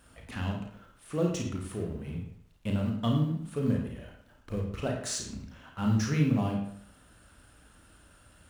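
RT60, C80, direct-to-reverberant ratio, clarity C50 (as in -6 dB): 0.65 s, 7.5 dB, 0.5 dB, 3.5 dB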